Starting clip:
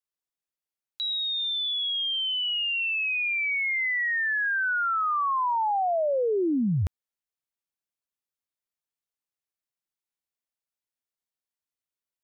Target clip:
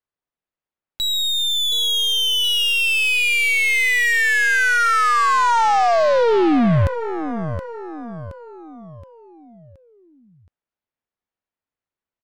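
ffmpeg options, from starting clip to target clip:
ffmpeg -i in.wav -af "adynamicsmooth=sensitivity=5:basefreq=2400,aecho=1:1:722|1444|2166|2888|3610:0.316|0.149|0.0699|0.0328|0.0154,aeval=exprs='0.126*(cos(1*acos(clip(val(0)/0.126,-1,1)))-cos(1*PI/2))+0.00178*(cos(7*acos(clip(val(0)/0.126,-1,1)))-cos(7*PI/2))+0.01*(cos(8*acos(clip(val(0)/0.126,-1,1)))-cos(8*PI/2))':channel_layout=same,volume=9dB" out.wav

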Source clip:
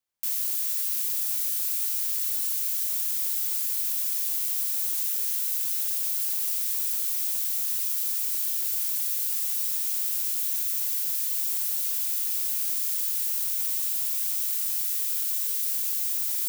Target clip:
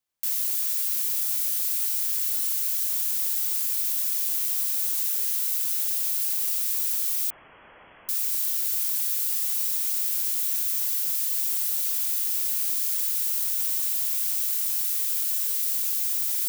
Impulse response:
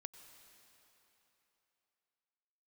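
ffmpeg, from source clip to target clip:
-filter_complex "[0:a]acrossover=split=1700[link_01][link_02];[link_01]aeval=exprs='(mod(316*val(0)+1,2)-1)/316':channel_layout=same[link_03];[link_02]acrusher=bits=6:mode=log:mix=0:aa=0.000001[link_04];[link_03][link_04]amix=inputs=2:normalize=0,asettb=1/sr,asplit=3[link_05][link_06][link_07];[link_05]atrim=end=7.304[link_08];[link_06]atrim=start=7.3:end=8.09,asetpts=PTS-STARTPTS,afade=type=in:duration=0.004:curve=qsin,afade=type=out:start_time=0.786:duration=0.004:curve=qsin,lowpass=frequency=2900:width_type=q:width=0.5098,lowpass=frequency=2900:width_type=q:width=0.6013,lowpass=frequency=2900:width_type=q:width=0.9,lowpass=frequency=2900:width_type=q:width=2.563,afreqshift=-3400[link_09];[link_07]atrim=start=8.086[link_10];[link_08][link_09]acrossfade=duration=0.004:curve1=hsin:curve2=qsin[link_11];[link_11][link_10]acrossfade=duration=0.004:curve1=qsin:curve2=hsin,volume=1.5dB"

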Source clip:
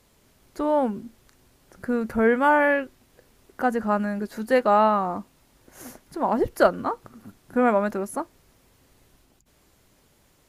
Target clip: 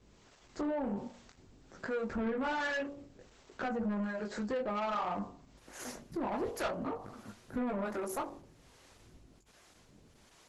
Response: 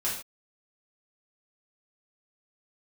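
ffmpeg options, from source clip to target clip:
-filter_complex "[0:a]asplit=2[link_01][link_02];[1:a]atrim=start_sample=2205,atrim=end_sample=3969[link_03];[link_02][link_03]afir=irnorm=-1:irlink=0,volume=-22dB[link_04];[link_01][link_04]amix=inputs=2:normalize=0,flanger=delay=18.5:depth=6.8:speed=0.54,bandreject=frequency=47.37:width_type=h:width=4,bandreject=frequency=94.74:width_type=h:width=4,bandreject=frequency=142.11:width_type=h:width=4,bandreject=frequency=189.48:width_type=h:width=4,bandreject=frequency=236.85:width_type=h:width=4,bandreject=frequency=284.22:width_type=h:width=4,bandreject=frequency=331.59:width_type=h:width=4,bandreject=frequency=378.96:width_type=h:width=4,bandreject=frequency=426.33:width_type=h:width=4,bandreject=frequency=473.7:width_type=h:width=4,bandreject=frequency=521.07:width_type=h:width=4,bandreject=frequency=568.44:width_type=h:width=4,bandreject=frequency=615.81:width_type=h:width=4,bandreject=frequency=663.18:width_type=h:width=4,bandreject=frequency=710.55:width_type=h:width=4,bandreject=frequency=757.92:width_type=h:width=4,bandreject=frequency=805.29:width_type=h:width=4,bandreject=frequency=852.66:width_type=h:width=4,bandreject=frequency=900.03:width_type=h:width=4,bandreject=frequency=947.4:width_type=h:width=4,bandreject=frequency=994.77:width_type=h:width=4,bandreject=frequency=1042.14:width_type=h:width=4,bandreject=frequency=1089.51:width_type=h:width=4,bandreject=frequency=1136.88:width_type=h:width=4,bandreject=frequency=1184.25:width_type=h:width=4,acompressor=threshold=-33dB:ratio=2.5,acrossover=split=450[link_05][link_06];[link_05]aeval=exprs='val(0)*(1-0.7/2+0.7/2*cos(2*PI*1.3*n/s))':channel_layout=same[link_07];[link_06]aeval=exprs='val(0)*(1-0.7/2-0.7/2*cos(2*PI*1.3*n/s))':channel_layout=same[link_08];[link_07][link_08]amix=inputs=2:normalize=0,equalizer=frequency=10000:width=1.8:gain=-4,asoftclip=type=tanh:threshold=-36dB,volume=6.5dB" -ar 48000 -c:a libopus -b:a 12k

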